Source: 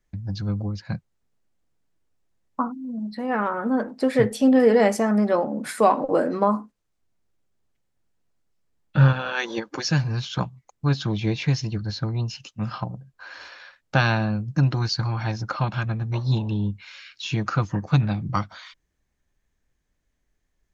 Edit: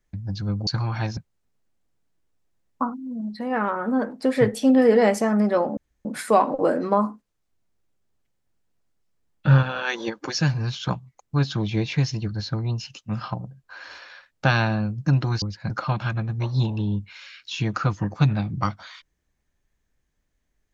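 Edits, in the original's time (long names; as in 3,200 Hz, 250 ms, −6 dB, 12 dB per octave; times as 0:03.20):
0:00.67–0:00.95: swap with 0:14.92–0:15.42
0:05.55: splice in room tone 0.28 s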